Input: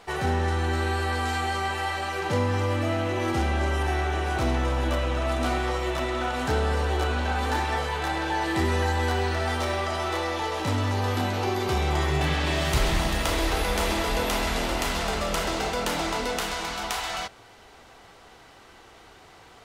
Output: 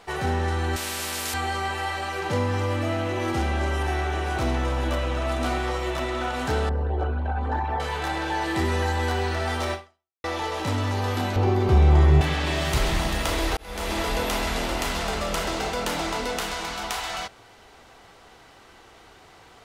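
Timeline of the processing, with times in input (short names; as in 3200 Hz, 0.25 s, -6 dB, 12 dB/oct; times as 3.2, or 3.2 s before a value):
0.76–1.34 spectral compressor 4:1
6.69–7.8 formant sharpening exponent 2
9.73–10.24 fade out exponential
11.36–12.21 tilt -3 dB/oct
13.57–14 fade in linear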